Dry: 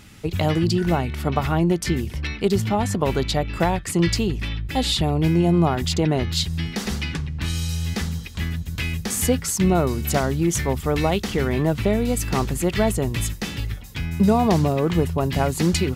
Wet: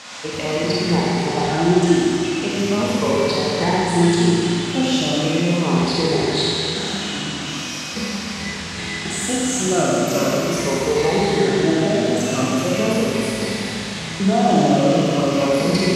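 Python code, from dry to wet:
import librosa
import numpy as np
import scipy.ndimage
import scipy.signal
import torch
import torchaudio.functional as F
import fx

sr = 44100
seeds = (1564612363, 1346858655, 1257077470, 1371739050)

y = fx.spec_ripple(x, sr, per_octave=0.89, drift_hz=-0.4, depth_db=13)
y = scipy.signal.sosfilt(scipy.signal.butter(2, 230.0, 'highpass', fs=sr, output='sos'), y)
y = fx.peak_eq(y, sr, hz=1300.0, db=-6.5, octaves=3.0)
y = fx.dmg_noise_band(y, sr, seeds[0], low_hz=520.0, high_hz=8100.0, level_db=-37.0)
y = fx.air_absorb(y, sr, metres=77.0)
y = fx.rev_schroeder(y, sr, rt60_s=2.7, comb_ms=31, drr_db=-6.5)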